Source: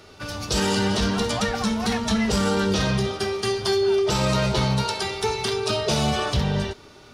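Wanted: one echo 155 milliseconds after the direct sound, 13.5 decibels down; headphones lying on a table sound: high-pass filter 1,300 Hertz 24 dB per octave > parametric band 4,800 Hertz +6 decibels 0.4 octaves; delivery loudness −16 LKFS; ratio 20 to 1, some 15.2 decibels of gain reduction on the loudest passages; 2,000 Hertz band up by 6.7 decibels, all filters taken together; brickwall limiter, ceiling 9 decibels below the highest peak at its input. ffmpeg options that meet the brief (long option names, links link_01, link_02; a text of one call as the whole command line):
ffmpeg -i in.wav -af "equalizer=frequency=2000:width_type=o:gain=9,acompressor=threshold=-32dB:ratio=20,alimiter=level_in=4dB:limit=-24dB:level=0:latency=1,volume=-4dB,highpass=frequency=1300:width=0.5412,highpass=frequency=1300:width=1.3066,equalizer=frequency=4800:width_type=o:width=0.4:gain=6,aecho=1:1:155:0.211,volume=22.5dB" out.wav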